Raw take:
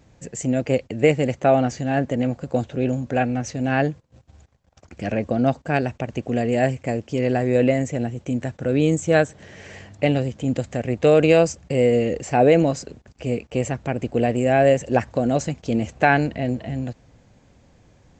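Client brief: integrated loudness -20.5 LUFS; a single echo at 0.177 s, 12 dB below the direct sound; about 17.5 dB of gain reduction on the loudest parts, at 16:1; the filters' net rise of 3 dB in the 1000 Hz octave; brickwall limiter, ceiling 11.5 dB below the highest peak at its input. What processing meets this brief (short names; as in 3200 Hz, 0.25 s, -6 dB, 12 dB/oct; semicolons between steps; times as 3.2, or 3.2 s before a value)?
bell 1000 Hz +5 dB; compressor 16:1, threshold -27 dBFS; limiter -23 dBFS; echo 0.177 s -12 dB; gain +14.5 dB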